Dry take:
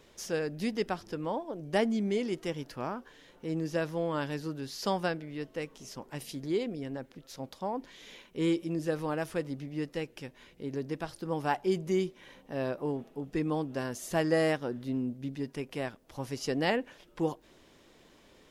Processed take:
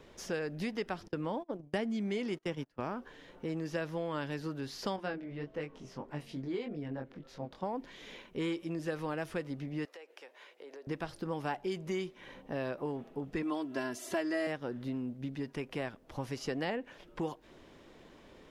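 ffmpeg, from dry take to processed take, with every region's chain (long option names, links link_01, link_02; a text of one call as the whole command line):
ffmpeg -i in.wav -filter_complex "[0:a]asettb=1/sr,asplit=3[link_01][link_02][link_03];[link_01]atrim=end=1.084[link_04];[link_02]atrim=start=1.08:end=2.8,asetpts=PTS-STARTPTS,afade=type=in:duration=0.004:curve=qsin,afade=type=out:start_time=1.716:duration=0.004:curve=qsin,agate=range=-28dB:threshold=-40dB:ratio=16:release=100:detection=peak,equalizer=frequency=200:width=0.74:gain=5[link_05];[link_03]atrim=start=2.796[link_06];[link_04][link_05]acrossfade=duration=0.004:curve1=hsin:curve2=qsin[link_07];[link_07][link_06]acrossfade=duration=0.004:curve1=qsin:curve2=hsin,asettb=1/sr,asplit=3[link_08][link_09][link_10];[link_08]atrim=end=4.964[link_11];[link_09]atrim=start=4.96:end=7.63,asetpts=PTS-STARTPTS,afade=type=in:duration=0.004:curve=qsin,afade=type=out:start_time=2.666:duration=0.004:curve=qsin,lowpass=frequency=3300:poles=1,acompressor=mode=upward:threshold=-46dB:ratio=2.5:attack=3.2:release=140:knee=2.83:detection=peak,flanger=delay=20:depth=2.9:speed=1.7[link_12];[link_10]atrim=start=7.626[link_13];[link_11][link_12]acrossfade=duration=0.004:curve1=hsin:curve2=qsin[link_14];[link_14][link_13]acrossfade=duration=0.004:curve1=qsin:curve2=hsin,asettb=1/sr,asplit=3[link_15][link_16][link_17];[link_15]atrim=end=9.854[link_18];[link_16]atrim=start=9.85:end=10.87,asetpts=PTS-STARTPTS,afade=type=in:duration=0.004:curve=qsin,afade=type=out:start_time=1.016:duration=0.004:curve=qsin,highpass=frequency=480:width=0.5412,highpass=frequency=480:width=1.3066,acompressor=threshold=-48dB:ratio=16:attack=3.2:release=140:knee=1:detection=peak[link_19];[link_17]atrim=start=10.866[link_20];[link_18][link_19]acrossfade=duration=0.004:curve1=hsin:curve2=qsin[link_21];[link_21][link_20]acrossfade=duration=0.004:curve1=qsin:curve2=hsin,asettb=1/sr,asplit=3[link_22][link_23][link_24];[link_22]atrim=end=13.424[link_25];[link_23]atrim=start=13.42:end=14.47,asetpts=PTS-STARTPTS,afade=type=in:duration=0.004:curve=qsin,afade=type=out:start_time=1.046:duration=0.004:curve=qsin,highpass=150,bandreject=frequency=6800:width=25,aecho=1:1:3:0.94,atrim=end_sample=46305[link_26];[link_24]atrim=start=14.466[link_27];[link_25][link_26]acrossfade=duration=0.004:curve1=hsin:curve2=qsin[link_28];[link_28][link_27]acrossfade=duration=0.004:curve1=qsin:curve2=hsin,highshelf=frequency=3900:gain=-11.5,acrossover=split=780|1600[link_29][link_30][link_31];[link_29]acompressor=threshold=-40dB:ratio=4[link_32];[link_30]acompressor=threshold=-49dB:ratio=4[link_33];[link_31]acompressor=threshold=-46dB:ratio=4[link_34];[link_32][link_33][link_34]amix=inputs=3:normalize=0,volume=4dB" out.wav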